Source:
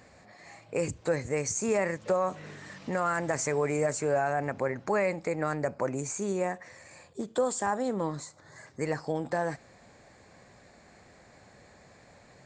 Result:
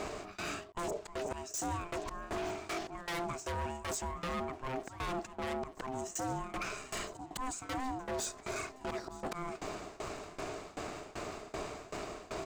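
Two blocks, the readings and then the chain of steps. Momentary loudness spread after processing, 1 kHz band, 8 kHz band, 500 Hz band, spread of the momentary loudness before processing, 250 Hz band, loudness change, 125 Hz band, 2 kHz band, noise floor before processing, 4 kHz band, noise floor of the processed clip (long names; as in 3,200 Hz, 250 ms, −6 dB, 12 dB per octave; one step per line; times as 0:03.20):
6 LU, −5.0 dB, −5.0 dB, −10.5 dB, 14 LU, −7.5 dB, −9.5 dB, −8.0 dB, −6.5 dB, −57 dBFS, +3.5 dB, −54 dBFS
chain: high-shelf EQ 6,200 Hz −4 dB
volume swells 229 ms
bass and treble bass +7 dB, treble +4 dB
reversed playback
downward compressor 4 to 1, threshold −44 dBFS, peak gain reduction 18 dB
reversed playback
leveller curve on the samples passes 2
shaped tremolo saw down 2.6 Hz, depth 95%
wave folding −39 dBFS
ring modulation 520 Hz
on a send: repeating echo 918 ms, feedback 48%, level −20 dB
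on the sum: level +10 dB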